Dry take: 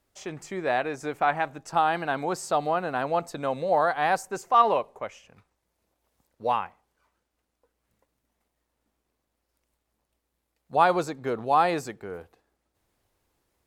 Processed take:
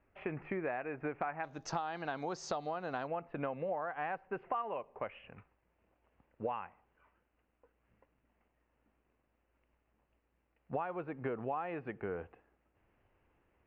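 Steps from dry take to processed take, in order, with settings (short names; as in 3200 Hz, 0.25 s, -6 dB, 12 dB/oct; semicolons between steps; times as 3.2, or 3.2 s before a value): Chebyshev low-pass 2600 Hz, order 5, from 1.43 s 6400 Hz, from 3.06 s 2800 Hz; compressor 16:1, threshold -36 dBFS, peak gain reduction 22 dB; gain +2 dB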